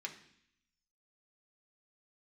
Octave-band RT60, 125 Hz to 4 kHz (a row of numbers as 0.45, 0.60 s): 0.95, 0.90, 0.65, 0.70, 0.85, 0.85 s